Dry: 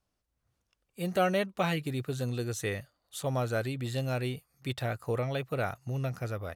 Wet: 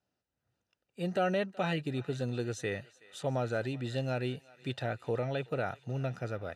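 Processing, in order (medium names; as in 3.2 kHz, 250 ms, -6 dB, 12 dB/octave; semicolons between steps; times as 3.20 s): high-pass 78 Hz; in parallel at +2.5 dB: peak limiter -22 dBFS, peak gain reduction 7.5 dB; on the sum: distance through air 78 m; comb of notches 1.1 kHz; thinning echo 374 ms, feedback 76%, high-pass 880 Hz, level -20 dB; trim -7 dB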